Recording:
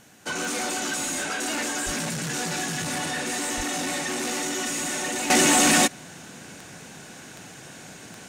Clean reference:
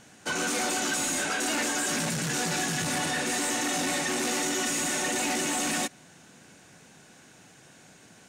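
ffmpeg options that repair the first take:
-filter_complex "[0:a]adeclick=t=4,asplit=3[a][b][c];[a]afade=t=out:st=1.85:d=0.02[d];[b]highpass=f=140:w=0.5412,highpass=f=140:w=1.3066,afade=t=in:st=1.85:d=0.02,afade=t=out:st=1.97:d=0.02[e];[c]afade=t=in:st=1.97:d=0.02[f];[d][e][f]amix=inputs=3:normalize=0,asplit=3[g][h][i];[g]afade=t=out:st=3.56:d=0.02[j];[h]highpass=f=140:w=0.5412,highpass=f=140:w=1.3066,afade=t=in:st=3.56:d=0.02,afade=t=out:st=3.68:d=0.02[k];[i]afade=t=in:st=3.68:d=0.02[l];[j][k][l]amix=inputs=3:normalize=0,agate=range=-21dB:threshold=-36dB,asetnsamples=n=441:p=0,asendcmd='5.3 volume volume -10.5dB',volume=0dB"

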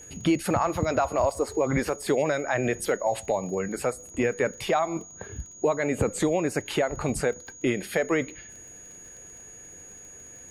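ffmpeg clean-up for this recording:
-af "adeclick=t=4,bandreject=f=6.7k:w=30"

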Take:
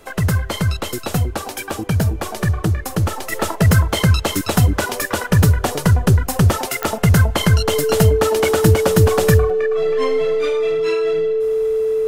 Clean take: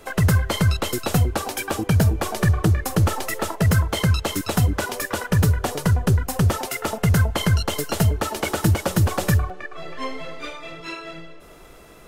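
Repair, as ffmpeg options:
-af "adeclick=t=4,bandreject=f=440:w=30,asetnsamples=n=441:p=0,asendcmd='3.32 volume volume -5dB',volume=0dB"

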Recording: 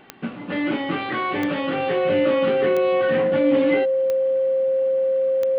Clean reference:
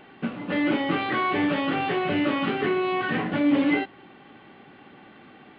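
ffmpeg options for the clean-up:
-af "adeclick=t=4,bandreject=f=530:w=30"

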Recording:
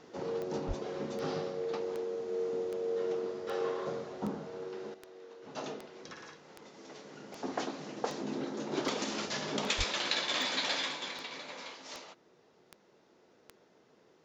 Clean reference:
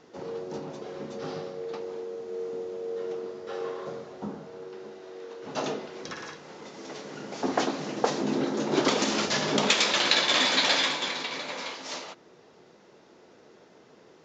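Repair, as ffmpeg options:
-filter_complex "[0:a]adeclick=t=4,asplit=3[a][b][c];[a]afade=t=out:st=0.67:d=0.02[d];[b]highpass=f=140:w=0.5412,highpass=f=140:w=1.3066,afade=t=in:st=0.67:d=0.02,afade=t=out:st=0.79:d=0.02[e];[c]afade=t=in:st=0.79:d=0.02[f];[d][e][f]amix=inputs=3:normalize=0,asplit=3[g][h][i];[g]afade=t=out:st=9.77:d=0.02[j];[h]highpass=f=140:w=0.5412,highpass=f=140:w=1.3066,afade=t=in:st=9.77:d=0.02,afade=t=out:st=9.89:d=0.02[k];[i]afade=t=in:st=9.89:d=0.02[l];[j][k][l]amix=inputs=3:normalize=0,asetnsamples=n=441:p=0,asendcmd='4.94 volume volume 9.5dB',volume=0dB"

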